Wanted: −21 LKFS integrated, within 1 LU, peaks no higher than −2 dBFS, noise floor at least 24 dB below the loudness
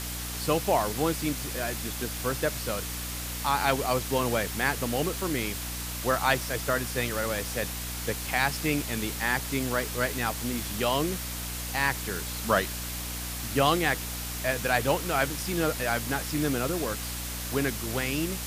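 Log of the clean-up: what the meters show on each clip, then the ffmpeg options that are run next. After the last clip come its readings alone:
mains hum 60 Hz; hum harmonics up to 300 Hz; level of the hum −36 dBFS; background noise floor −35 dBFS; target noise floor −53 dBFS; integrated loudness −28.5 LKFS; sample peak −8.0 dBFS; target loudness −21.0 LKFS
→ -af "bandreject=frequency=60:width_type=h:width=4,bandreject=frequency=120:width_type=h:width=4,bandreject=frequency=180:width_type=h:width=4,bandreject=frequency=240:width_type=h:width=4,bandreject=frequency=300:width_type=h:width=4"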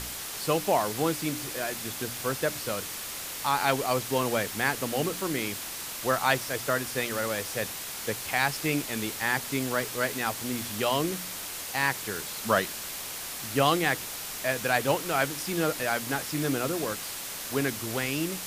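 mains hum none found; background noise floor −37 dBFS; target noise floor −53 dBFS
→ -af "afftdn=noise_reduction=16:noise_floor=-37"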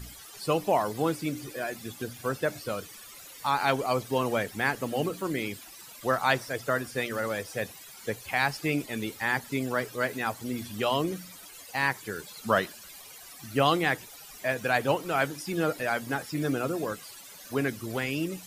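background noise floor −48 dBFS; target noise floor −54 dBFS
→ -af "afftdn=noise_reduction=6:noise_floor=-48"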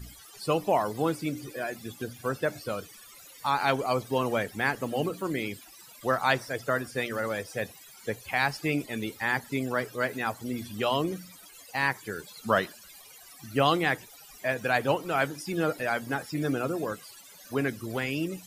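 background noise floor −51 dBFS; target noise floor −54 dBFS
→ -af "afftdn=noise_reduction=6:noise_floor=-51"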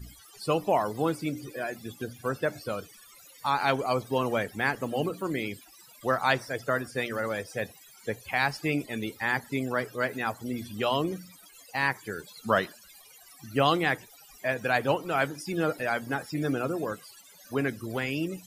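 background noise floor −54 dBFS; integrated loudness −30.0 LKFS; sample peak −8.5 dBFS; target loudness −21.0 LKFS
→ -af "volume=9dB,alimiter=limit=-2dB:level=0:latency=1"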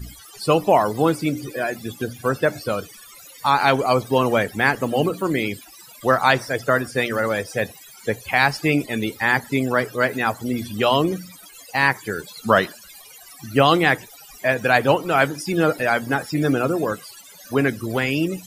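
integrated loudness −21.0 LKFS; sample peak −2.0 dBFS; background noise floor −45 dBFS

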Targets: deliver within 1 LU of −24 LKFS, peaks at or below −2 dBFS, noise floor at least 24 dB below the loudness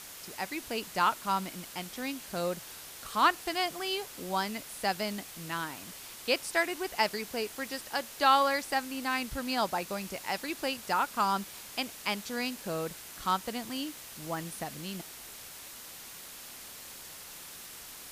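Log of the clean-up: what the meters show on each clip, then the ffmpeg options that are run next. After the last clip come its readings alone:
background noise floor −47 dBFS; target noise floor −57 dBFS; integrated loudness −32.5 LKFS; sample peak −10.5 dBFS; target loudness −24.0 LKFS
→ -af "afftdn=noise_reduction=10:noise_floor=-47"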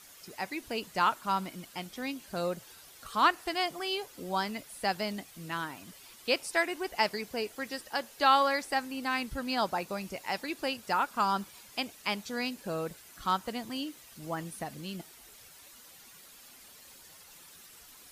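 background noise floor −54 dBFS; target noise floor −57 dBFS
→ -af "afftdn=noise_reduction=6:noise_floor=-54"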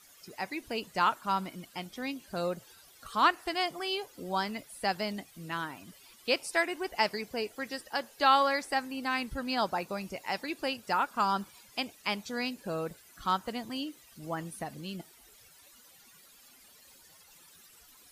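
background noise floor −58 dBFS; integrated loudness −32.5 LKFS; sample peak −11.0 dBFS; target loudness −24.0 LKFS
→ -af "volume=8.5dB"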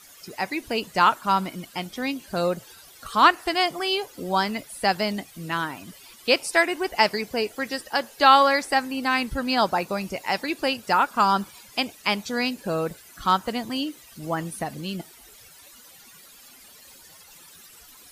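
integrated loudness −24.0 LKFS; sample peak −2.5 dBFS; background noise floor −50 dBFS

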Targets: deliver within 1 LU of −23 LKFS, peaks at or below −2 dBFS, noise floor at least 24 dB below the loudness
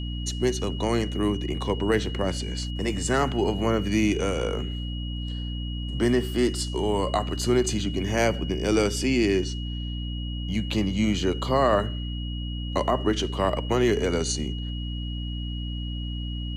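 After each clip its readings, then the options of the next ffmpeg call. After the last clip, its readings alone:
mains hum 60 Hz; hum harmonics up to 300 Hz; level of the hum −29 dBFS; interfering tone 2,900 Hz; level of the tone −39 dBFS; integrated loudness −26.5 LKFS; sample peak −10.5 dBFS; target loudness −23.0 LKFS
→ -af "bandreject=frequency=60:width_type=h:width=4,bandreject=frequency=120:width_type=h:width=4,bandreject=frequency=180:width_type=h:width=4,bandreject=frequency=240:width_type=h:width=4,bandreject=frequency=300:width_type=h:width=4"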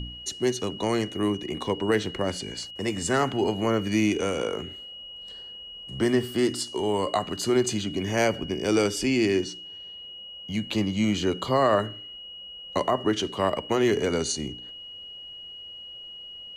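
mains hum none found; interfering tone 2,900 Hz; level of the tone −39 dBFS
→ -af "bandreject=frequency=2900:width=30"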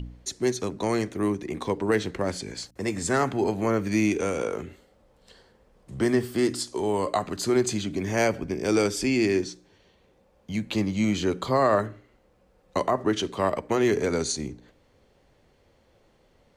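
interfering tone none found; integrated loudness −26.5 LKFS; sample peak −11.5 dBFS; target loudness −23.0 LKFS
→ -af "volume=3.5dB"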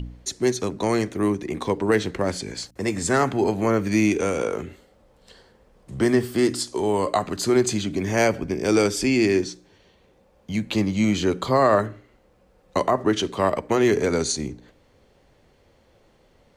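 integrated loudness −23.0 LKFS; sample peak −8.0 dBFS; background noise floor −59 dBFS

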